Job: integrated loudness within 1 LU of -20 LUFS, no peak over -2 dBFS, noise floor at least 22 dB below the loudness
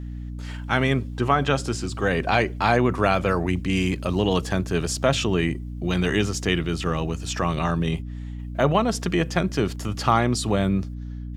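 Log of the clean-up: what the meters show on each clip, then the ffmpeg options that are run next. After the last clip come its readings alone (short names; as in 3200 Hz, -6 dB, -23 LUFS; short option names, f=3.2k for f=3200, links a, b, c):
hum 60 Hz; harmonics up to 300 Hz; hum level -31 dBFS; loudness -23.5 LUFS; peak -5.0 dBFS; loudness target -20.0 LUFS
-> -af "bandreject=f=60:t=h:w=6,bandreject=f=120:t=h:w=6,bandreject=f=180:t=h:w=6,bandreject=f=240:t=h:w=6,bandreject=f=300:t=h:w=6"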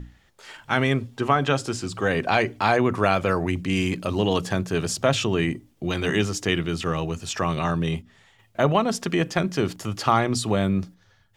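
hum none; loudness -24.0 LUFS; peak -5.0 dBFS; loudness target -20.0 LUFS
-> -af "volume=4dB,alimiter=limit=-2dB:level=0:latency=1"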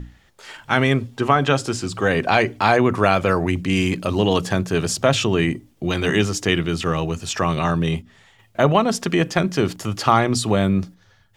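loudness -20.0 LUFS; peak -2.0 dBFS; noise floor -56 dBFS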